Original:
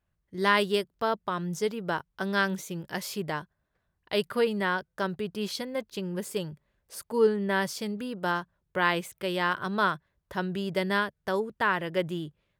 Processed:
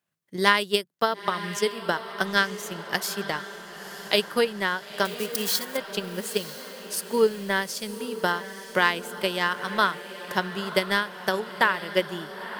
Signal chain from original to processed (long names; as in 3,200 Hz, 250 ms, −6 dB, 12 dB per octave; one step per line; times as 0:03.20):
0:05.05–0:05.77: spike at every zero crossing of −29.5 dBFS
high-pass filter 140 Hz 24 dB per octave
high-shelf EQ 2,100 Hz +9 dB
transient designer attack +9 dB, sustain −5 dB
on a send: feedback delay with all-pass diffusion 943 ms, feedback 54%, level −12 dB
on the sum: level −3 dB